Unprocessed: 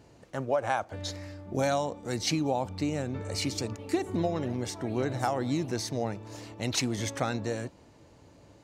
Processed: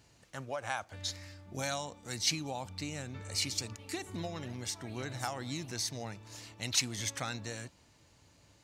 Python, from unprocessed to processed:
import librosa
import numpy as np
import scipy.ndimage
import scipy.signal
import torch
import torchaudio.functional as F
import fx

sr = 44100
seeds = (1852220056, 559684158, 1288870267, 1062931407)

y = fx.tone_stack(x, sr, knobs='5-5-5')
y = y * 10.0 ** (7.5 / 20.0)